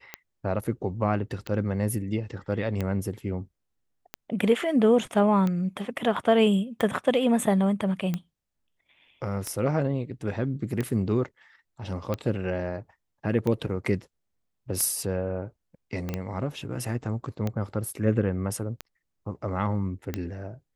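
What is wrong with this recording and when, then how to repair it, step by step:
scratch tick 45 rpm −16 dBFS
0:16.09: click −18 dBFS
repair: click removal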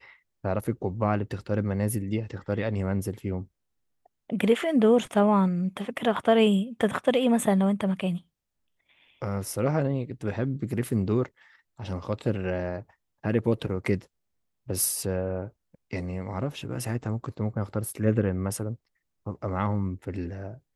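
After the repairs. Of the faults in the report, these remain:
0:16.09: click

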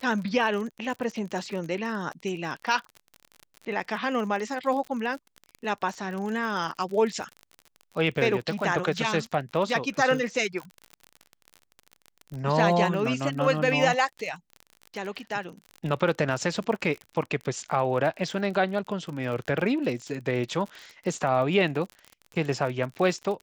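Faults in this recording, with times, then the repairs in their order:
surface crackle 40 per second −33 dBFS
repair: click removal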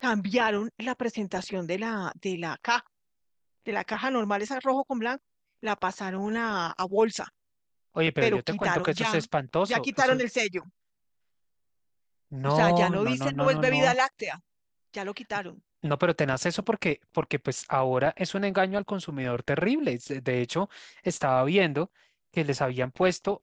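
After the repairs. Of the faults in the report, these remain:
none of them is left

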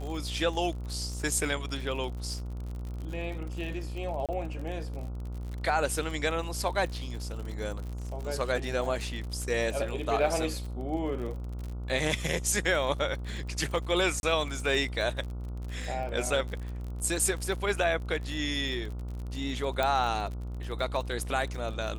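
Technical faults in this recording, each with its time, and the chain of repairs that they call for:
mains buzz 60 Hz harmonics 24 −36 dBFS
surface crackle 52 per second −36 dBFS
0:04.26–0:04.29: drop-out 27 ms
0:14.20–0:14.23: drop-out 31 ms
0:19.83: click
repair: click removal
hum removal 60 Hz, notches 24
repair the gap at 0:04.26, 27 ms
repair the gap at 0:14.20, 31 ms

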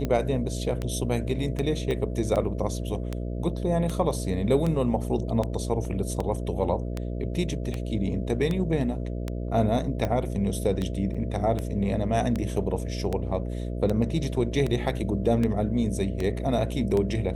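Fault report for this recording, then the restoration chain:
mains buzz 60 Hz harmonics 11 −31 dBFS
scratch tick 78 rpm −16 dBFS
0:01.91: click −18 dBFS
0:05.85: drop-out 2 ms
0:11.14–0:11.15: drop-out 5.6 ms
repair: click removal
hum removal 60 Hz, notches 11
repair the gap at 0:05.85, 2 ms
repair the gap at 0:11.14, 5.6 ms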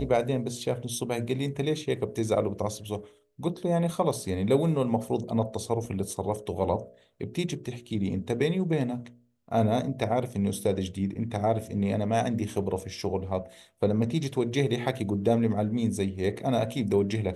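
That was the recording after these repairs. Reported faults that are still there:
0:01.91: click

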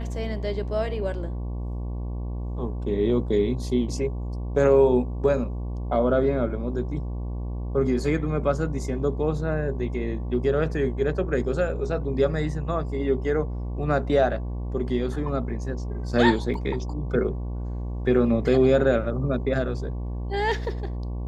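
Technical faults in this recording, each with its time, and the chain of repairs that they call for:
mains buzz 60 Hz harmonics 19 −30 dBFS
0:16.54: drop-out 2.3 ms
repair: hum removal 60 Hz, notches 19
repair the gap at 0:16.54, 2.3 ms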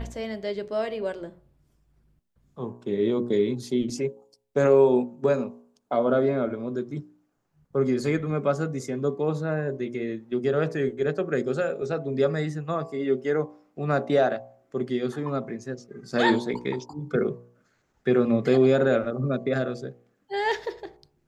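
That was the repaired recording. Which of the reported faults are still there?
none of them is left

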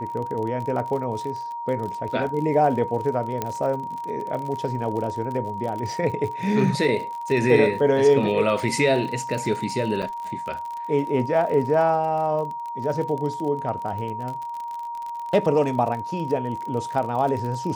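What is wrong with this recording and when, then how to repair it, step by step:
surface crackle 42 per second −30 dBFS
whistle 940 Hz −29 dBFS
0:03.42: click −11 dBFS
0:10.02–0:10.03: drop-out 6.5 ms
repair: click removal
notch filter 940 Hz, Q 30
repair the gap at 0:10.02, 6.5 ms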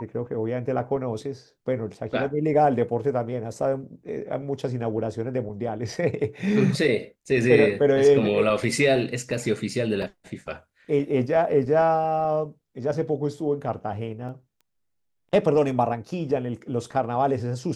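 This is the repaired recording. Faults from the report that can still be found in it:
none of them is left

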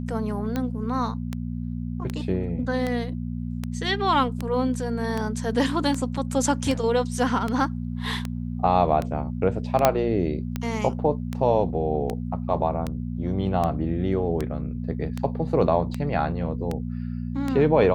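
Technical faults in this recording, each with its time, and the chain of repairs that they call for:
mains hum 60 Hz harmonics 4 −30 dBFS
scratch tick 78 rpm −14 dBFS
0:09.85: click −2 dBFS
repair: click removal
hum removal 60 Hz, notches 4

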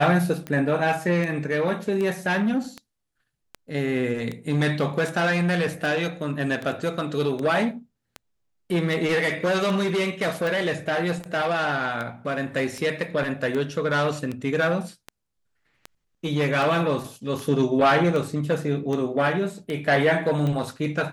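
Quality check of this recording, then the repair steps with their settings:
scratch tick 78 rpm −18 dBFS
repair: click removal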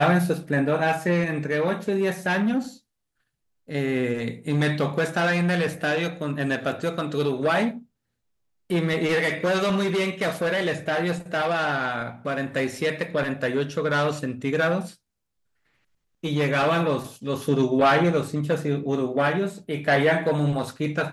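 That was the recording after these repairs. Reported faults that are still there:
none of them is left

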